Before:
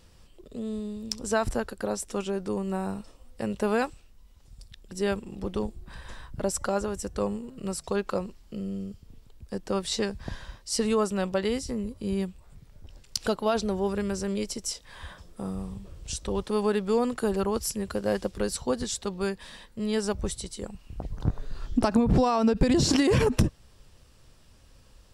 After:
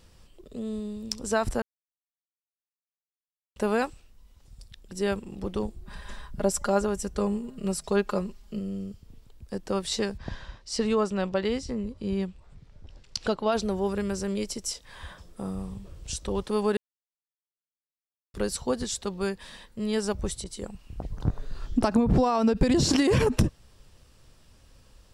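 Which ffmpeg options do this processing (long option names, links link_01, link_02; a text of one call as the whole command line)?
ffmpeg -i in.wav -filter_complex "[0:a]asettb=1/sr,asplit=3[link_01][link_02][link_03];[link_01]atrim=end=5.844[link_04];[link_02]atrim=start=5.84:end=8.59,asetpts=PTS-STARTPTS,afade=type=in:duration=0.004:curve=qsin,afade=type=out:start_time=2.746:duration=0.004:curve=qsin,aecho=1:1:4.9:0.62,atrim=end_sample=121275[link_05];[link_03]atrim=start=8.586[link_06];[link_04][link_05]acrossfade=duration=0.004:curve1=hsin:curve2=qsin[link_07];[link_07][link_06]acrossfade=duration=0.004:curve1=qsin:curve2=hsin,asplit=3[link_08][link_09][link_10];[link_08]afade=type=out:start_time=10.17:duration=0.02[link_11];[link_09]lowpass=5700,afade=type=in:start_time=10.17:duration=0.02,afade=type=out:start_time=13.51:duration=0.02[link_12];[link_10]afade=type=in:start_time=13.51:duration=0.02[link_13];[link_11][link_12][link_13]amix=inputs=3:normalize=0,asettb=1/sr,asplit=3[link_14][link_15][link_16];[link_14]atrim=end=20.444[link_17];[link_15]atrim=start=20.44:end=22.35,asetpts=PTS-STARTPTS,afade=type=in:duration=0.004:curve=qsin,afade=type=out:start_time=1.906:duration=0.004:curve=qsin,adynamicequalizer=threshold=0.00794:dfrequency=2000:dqfactor=0.7:tfrequency=2000:tqfactor=0.7:attack=5:release=100:ratio=0.375:range=2.5:mode=cutabove:tftype=highshelf[link_18];[link_16]atrim=start=22.346[link_19];[link_17][link_18]acrossfade=duration=0.004:curve1=hsin:curve2=qsin[link_20];[link_20][link_19]acrossfade=duration=0.004:curve1=qsin:curve2=hsin,asplit=5[link_21][link_22][link_23][link_24][link_25];[link_21]atrim=end=1.62,asetpts=PTS-STARTPTS,afade=type=out:start_time=1.616:duration=0.004:curve=hsin[link_26];[link_22]atrim=start=1.62:end=3.56,asetpts=PTS-STARTPTS,volume=0[link_27];[link_23]atrim=start=3.56:end=16.77,asetpts=PTS-STARTPTS,afade=type=in:duration=0.004:curve=hsin,afade=type=out:start_time=13.206:duration=0.004:curve=hsin[link_28];[link_24]atrim=start=16.77:end=18.34,asetpts=PTS-STARTPTS,volume=0[link_29];[link_25]atrim=start=18.34,asetpts=PTS-STARTPTS,afade=type=in:duration=0.004:curve=hsin[link_30];[link_26][link_27][link_28][link_29][link_30]concat=n=5:v=0:a=1" out.wav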